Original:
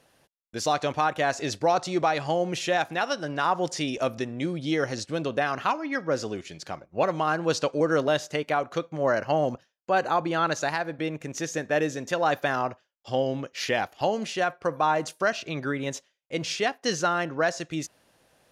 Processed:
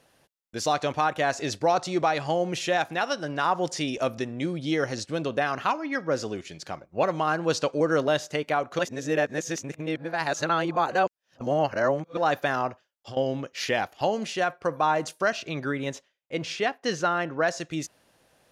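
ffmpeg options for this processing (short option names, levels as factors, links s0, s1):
-filter_complex "[0:a]asettb=1/sr,asplit=3[s0][s1][s2];[s0]atrim=end=12.694[s3];[s1]atrim=start=12.69:end=13.17,asetpts=PTS-STARTPTS,afade=t=in:d=0.004:c=qsin,afade=t=out:st=0.476:d=0.004:c=qsin,acompressor=threshold=0.0178:ratio=6:attack=3.2:release=140:knee=1:detection=peak[s4];[s2]atrim=start=13.166[s5];[s3][s4]acrossfade=d=0.004:c1=hsin:c2=qsin[s6];[s6][s5]acrossfade=d=0.004:c1=qsin:c2=hsin,asettb=1/sr,asplit=3[s7][s8][s9];[s7]atrim=end=15.914[s10];[s8]atrim=start=15.91:end=17.48,asetpts=PTS-STARTPTS,afade=t=in:d=0.004:c=qsin,afade=t=out:st=1.566:d=0.004:c=qsin,bass=f=250:g=-1,treble=f=4000:g=-7[s11];[s9]atrim=start=17.476[s12];[s10][s11]acrossfade=d=0.004:c1=hsin:c2=qsin[s13];[s13][s12]acrossfade=d=0.004:c1=qsin:c2=hsin,asplit=3[s14][s15][s16];[s14]atrim=end=8.792[s17];[s15]atrim=start=8.788:end=12.172,asetpts=PTS-STARTPTS,areverse[s18];[s16]atrim=start=12.168[s19];[s17][s18]acrossfade=d=0.004:c1=hsin:c2=hsin[s20];[s20][s19]acrossfade=d=0.004:c1=hsin:c2=hsin"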